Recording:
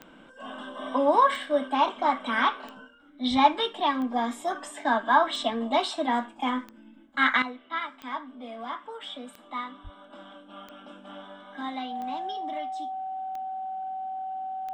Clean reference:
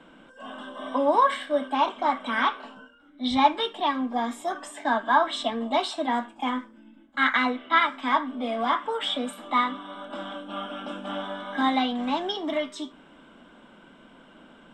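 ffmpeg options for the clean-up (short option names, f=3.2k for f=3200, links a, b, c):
-filter_complex "[0:a]adeclick=t=4,bandreject=f=760:w=30,asplit=3[a][b][c];[a]afade=t=out:st=9.83:d=0.02[d];[b]highpass=f=140:w=0.5412,highpass=f=140:w=1.3066,afade=t=in:st=9.83:d=0.02,afade=t=out:st=9.95:d=0.02[e];[c]afade=t=in:st=9.95:d=0.02[f];[d][e][f]amix=inputs=3:normalize=0,asetnsamples=n=441:p=0,asendcmd='7.42 volume volume 11dB',volume=0dB"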